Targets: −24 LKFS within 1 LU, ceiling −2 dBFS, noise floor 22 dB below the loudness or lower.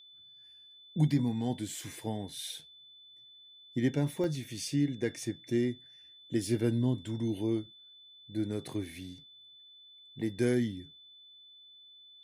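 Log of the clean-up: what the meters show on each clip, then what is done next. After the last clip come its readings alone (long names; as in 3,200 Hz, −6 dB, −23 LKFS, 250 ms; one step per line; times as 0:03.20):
number of dropouts 1; longest dropout 1.5 ms; interfering tone 3,500 Hz; level of the tone −53 dBFS; integrated loudness −33.0 LKFS; sample peak −16.0 dBFS; target loudness −24.0 LKFS
→ repair the gap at 0:04.24, 1.5 ms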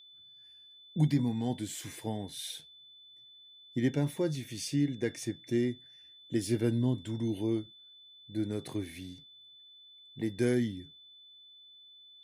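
number of dropouts 0; interfering tone 3,500 Hz; level of the tone −53 dBFS
→ notch filter 3,500 Hz, Q 30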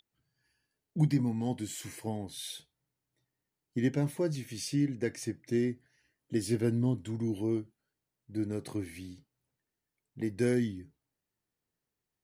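interfering tone none found; integrated loudness −33.0 LKFS; sample peak −16.0 dBFS; target loudness −24.0 LKFS
→ level +9 dB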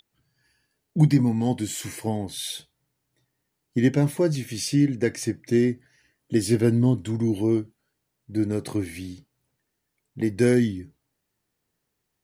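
integrated loudness −24.0 LKFS; sample peak −7.0 dBFS; background noise floor −79 dBFS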